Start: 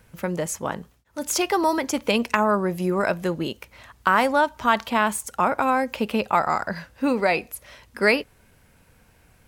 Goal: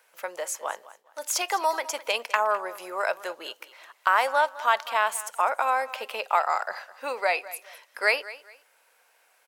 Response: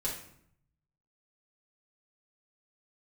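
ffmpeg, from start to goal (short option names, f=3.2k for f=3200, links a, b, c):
-filter_complex "[0:a]highpass=f=560:w=0.5412,highpass=f=560:w=1.3066,asplit=2[a][b];[b]aecho=0:1:207|414:0.133|0.036[c];[a][c]amix=inputs=2:normalize=0,volume=-2dB"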